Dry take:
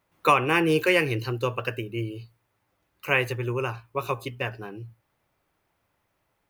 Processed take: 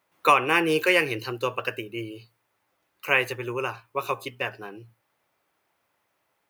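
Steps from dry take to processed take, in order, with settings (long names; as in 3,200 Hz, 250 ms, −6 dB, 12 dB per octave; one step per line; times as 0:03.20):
high-pass filter 410 Hz 6 dB per octave
level +2 dB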